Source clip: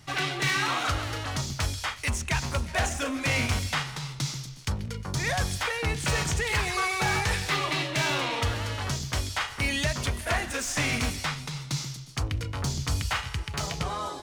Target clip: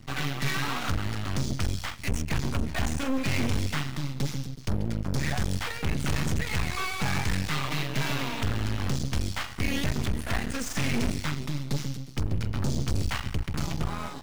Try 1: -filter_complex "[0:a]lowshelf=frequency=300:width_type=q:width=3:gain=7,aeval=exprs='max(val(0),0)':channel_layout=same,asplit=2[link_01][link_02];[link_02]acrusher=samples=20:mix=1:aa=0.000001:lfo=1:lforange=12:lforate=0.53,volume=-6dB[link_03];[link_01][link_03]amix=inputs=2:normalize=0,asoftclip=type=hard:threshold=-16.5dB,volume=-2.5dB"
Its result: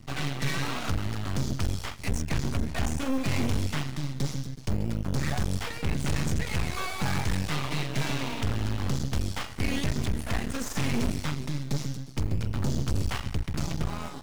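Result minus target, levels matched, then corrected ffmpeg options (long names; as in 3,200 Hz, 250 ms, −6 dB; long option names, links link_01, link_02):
sample-and-hold swept by an LFO: distortion +6 dB
-filter_complex "[0:a]lowshelf=frequency=300:width_type=q:width=3:gain=7,aeval=exprs='max(val(0),0)':channel_layout=same,asplit=2[link_01][link_02];[link_02]acrusher=samples=4:mix=1:aa=0.000001:lfo=1:lforange=2.4:lforate=0.53,volume=-6dB[link_03];[link_01][link_03]amix=inputs=2:normalize=0,asoftclip=type=hard:threshold=-16.5dB,volume=-2.5dB"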